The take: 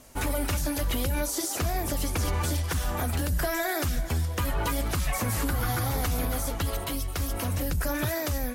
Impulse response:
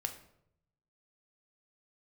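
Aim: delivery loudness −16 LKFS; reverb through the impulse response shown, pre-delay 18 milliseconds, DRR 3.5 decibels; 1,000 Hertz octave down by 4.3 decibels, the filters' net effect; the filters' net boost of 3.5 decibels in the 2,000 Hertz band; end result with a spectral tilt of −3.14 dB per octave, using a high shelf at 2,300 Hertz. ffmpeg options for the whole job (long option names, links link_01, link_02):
-filter_complex "[0:a]equalizer=frequency=1000:width_type=o:gain=-8.5,equalizer=frequency=2000:width_type=o:gain=5,highshelf=frequency=2300:gain=4.5,asplit=2[link_01][link_02];[1:a]atrim=start_sample=2205,adelay=18[link_03];[link_02][link_03]afir=irnorm=-1:irlink=0,volume=-4dB[link_04];[link_01][link_04]amix=inputs=2:normalize=0,volume=9.5dB"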